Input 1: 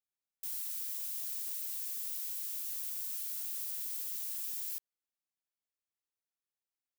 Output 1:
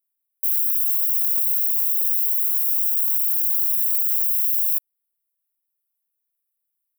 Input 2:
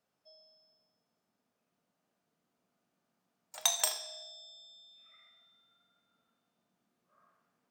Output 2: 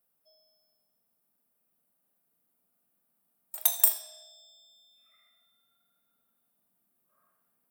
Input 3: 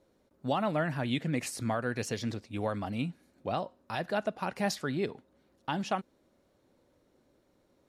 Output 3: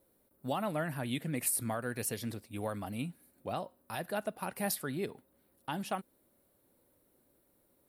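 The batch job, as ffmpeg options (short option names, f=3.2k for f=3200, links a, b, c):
-af "aexciter=amount=9:drive=6.5:freq=9k,volume=-4.5dB"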